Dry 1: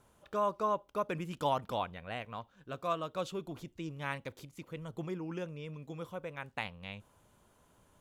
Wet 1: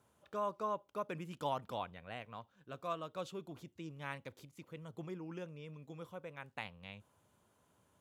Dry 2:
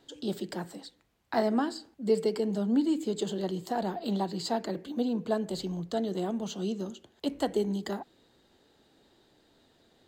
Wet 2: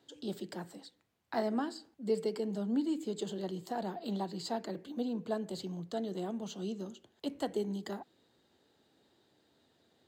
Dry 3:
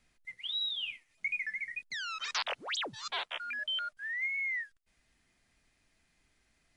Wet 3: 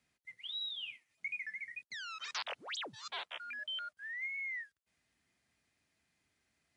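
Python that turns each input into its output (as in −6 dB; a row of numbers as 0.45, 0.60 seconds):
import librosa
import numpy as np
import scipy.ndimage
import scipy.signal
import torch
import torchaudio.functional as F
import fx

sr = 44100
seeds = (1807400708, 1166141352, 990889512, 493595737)

y = scipy.signal.sosfilt(scipy.signal.butter(4, 71.0, 'highpass', fs=sr, output='sos'), x)
y = F.gain(torch.from_numpy(y), -6.0).numpy()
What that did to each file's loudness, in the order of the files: −6.0, −6.0, −6.0 LU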